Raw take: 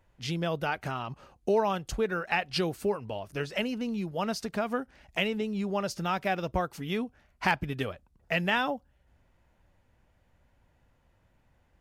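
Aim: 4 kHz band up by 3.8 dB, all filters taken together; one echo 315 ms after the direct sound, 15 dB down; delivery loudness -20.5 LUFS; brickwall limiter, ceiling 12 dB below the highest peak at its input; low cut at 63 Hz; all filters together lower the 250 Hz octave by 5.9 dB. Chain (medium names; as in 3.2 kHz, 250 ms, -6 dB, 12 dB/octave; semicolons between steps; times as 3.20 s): high-pass 63 Hz; peaking EQ 250 Hz -8.5 dB; peaking EQ 4 kHz +5.5 dB; peak limiter -21.5 dBFS; delay 315 ms -15 dB; trim +14 dB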